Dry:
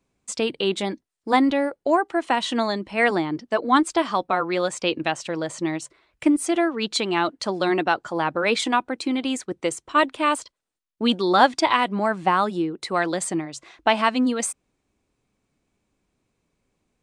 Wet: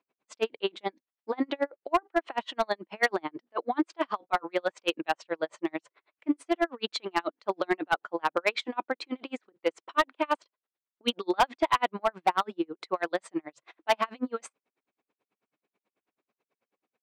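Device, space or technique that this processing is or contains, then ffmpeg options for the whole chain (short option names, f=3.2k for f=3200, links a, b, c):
helicopter radio: -af "highpass=390,lowpass=2.9k,aeval=exprs='val(0)*pow(10,-40*(0.5-0.5*cos(2*PI*9.2*n/s))/20)':c=same,asoftclip=type=hard:threshold=-18.5dB,volume=2.5dB"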